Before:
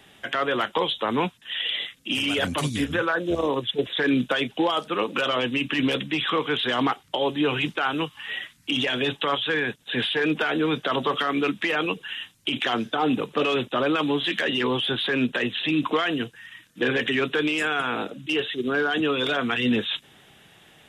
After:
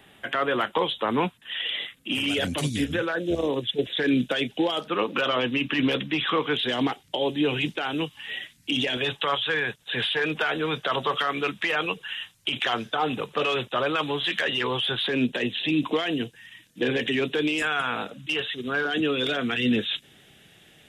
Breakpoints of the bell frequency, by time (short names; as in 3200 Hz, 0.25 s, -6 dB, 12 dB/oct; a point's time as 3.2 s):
bell -9 dB 0.91 oct
5600 Hz
from 2.26 s 1100 Hz
from 4.8 s 8500 Hz
from 6.53 s 1200 Hz
from 8.97 s 270 Hz
from 15.08 s 1300 Hz
from 17.62 s 340 Hz
from 18.85 s 1000 Hz